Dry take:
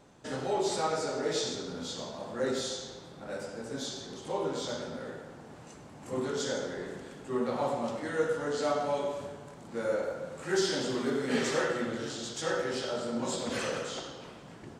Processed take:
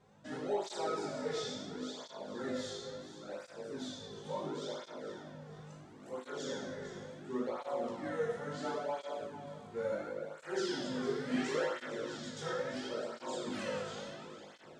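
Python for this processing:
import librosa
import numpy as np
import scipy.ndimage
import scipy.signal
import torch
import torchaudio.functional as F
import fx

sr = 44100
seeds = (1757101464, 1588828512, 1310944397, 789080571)

y = fx.lowpass(x, sr, hz=4000.0, slope=6)
y = fx.comb_fb(y, sr, f0_hz=51.0, decay_s=0.65, harmonics='all', damping=0.0, mix_pct=90)
y = fx.echo_feedback(y, sr, ms=452, feedback_pct=36, wet_db=-11.5)
y = fx.flanger_cancel(y, sr, hz=0.72, depth_ms=3.6)
y = y * librosa.db_to_amplitude(6.5)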